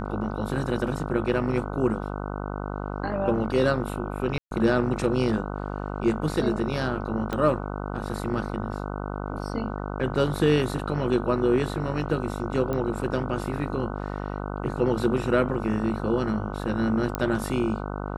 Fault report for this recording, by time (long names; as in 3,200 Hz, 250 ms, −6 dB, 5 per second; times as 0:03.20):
mains buzz 50 Hz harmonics 30 −32 dBFS
0:04.38–0:04.51: drop-out 132 ms
0:07.33: click −15 dBFS
0:12.73: click −17 dBFS
0:17.15: click −11 dBFS